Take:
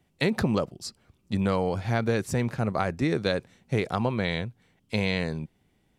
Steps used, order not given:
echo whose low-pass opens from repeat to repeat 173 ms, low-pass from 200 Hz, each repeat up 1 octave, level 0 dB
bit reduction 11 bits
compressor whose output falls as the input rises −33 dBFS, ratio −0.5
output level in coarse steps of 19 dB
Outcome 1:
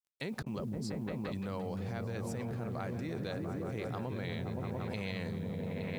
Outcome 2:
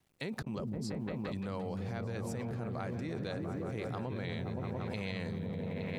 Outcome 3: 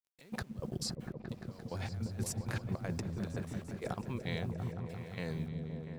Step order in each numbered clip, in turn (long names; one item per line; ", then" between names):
echo whose low-pass opens from repeat to repeat, then output level in coarse steps, then bit reduction, then compressor whose output falls as the input rises
bit reduction, then echo whose low-pass opens from repeat to repeat, then output level in coarse steps, then compressor whose output falls as the input rises
compressor whose output falls as the input rises, then output level in coarse steps, then bit reduction, then echo whose low-pass opens from repeat to repeat